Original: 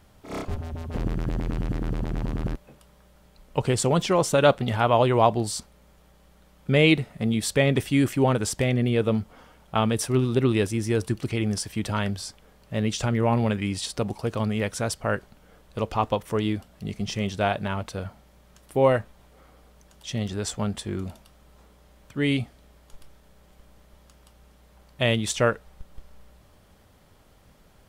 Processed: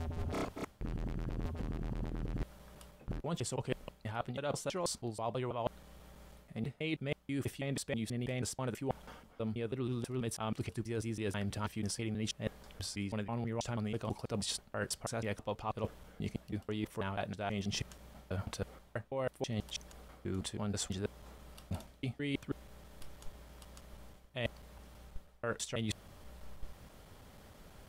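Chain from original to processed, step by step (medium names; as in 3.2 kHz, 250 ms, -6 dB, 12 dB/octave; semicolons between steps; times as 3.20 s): slices played last to first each 162 ms, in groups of 5; reverse; compression 12:1, threshold -35 dBFS, peak gain reduction 22.5 dB; reverse; trim +1 dB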